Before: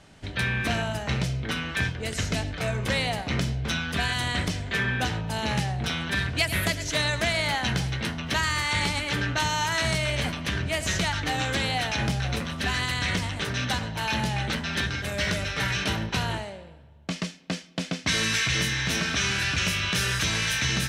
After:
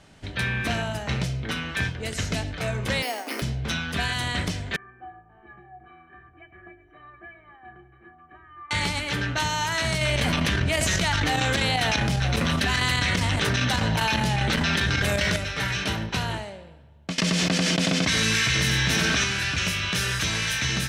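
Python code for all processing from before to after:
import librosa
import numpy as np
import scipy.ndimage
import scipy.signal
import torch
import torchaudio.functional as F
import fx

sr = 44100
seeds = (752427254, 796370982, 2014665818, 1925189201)

y = fx.chain(x, sr, fx.steep_highpass(hz=240.0, slope=72),
    fx.resample_bad(factor=6, down='filtered', up='hold'), at=(3.02, 3.42))
y = fx.chain(y, sr, fx.cheby2_lowpass(hz=4500.0, order=4, stop_db=50),
    fx.stiff_resonator(f0_hz=350.0, decay_s=0.29, stiffness=0.03), at=(4.76, 8.71))
y = fx.chain(y, sr, fx.chopper(hz=5.0, depth_pct=65, duty_pct=75),
    fx.env_flatten(amount_pct=100), at=(10.01, 15.37))
y = fx.chain(y, sr, fx.echo_single(ms=91, db=-6.0),
    fx.env_flatten(amount_pct=100), at=(17.18, 19.24))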